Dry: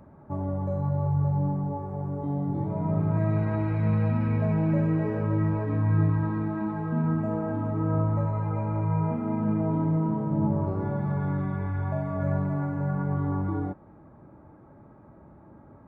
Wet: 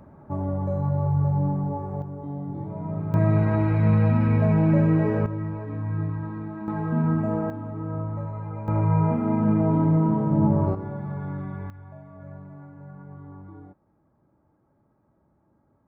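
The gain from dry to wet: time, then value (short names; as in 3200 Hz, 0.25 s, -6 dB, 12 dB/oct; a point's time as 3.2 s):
+2.5 dB
from 2.02 s -4 dB
from 3.14 s +5 dB
from 5.26 s -5 dB
from 6.68 s +3 dB
from 7.5 s -5 dB
from 8.68 s +5 dB
from 10.75 s -4 dB
from 11.7 s -15 dB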